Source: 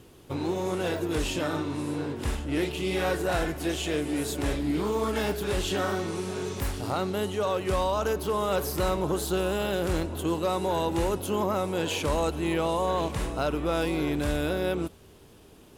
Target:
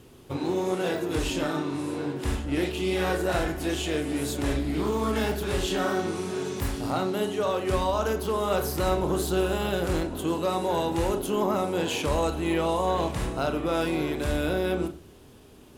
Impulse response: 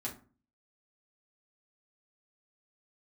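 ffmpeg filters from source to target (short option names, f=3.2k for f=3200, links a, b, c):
-filter_complex "[0:a]asplit=2[a][b];[1:a]atrim=start_sample=2205,lowpass=7.3k,adelay=28[c];[b][c]afir=irnorm=-1:irlink=0,volume=-7dB[d];[a][d]amix=inputs=2:normalize=0"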